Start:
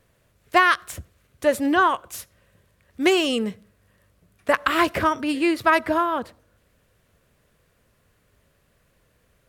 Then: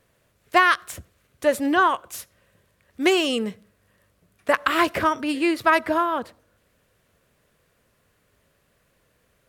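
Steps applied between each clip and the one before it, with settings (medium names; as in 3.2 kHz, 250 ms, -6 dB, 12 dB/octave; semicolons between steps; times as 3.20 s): bass shelf 120 Hz -7 dB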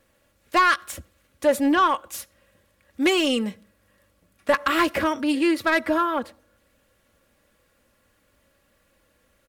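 comb 3.6 ms, depth 55%; saturation -11 dBFS, distortion -16 dB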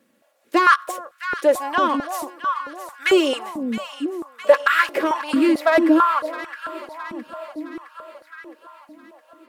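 echo whose repeats swap between lows and highs 332 ms, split 970 Hz, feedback 76%, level -9 dB; step-sequenced high-pass 4.5 Hz 230–1500 Hz; trim -1.5 dB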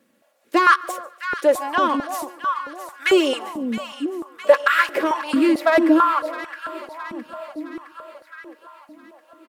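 feedback delay 144 ms, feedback 44%, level -23.5 dB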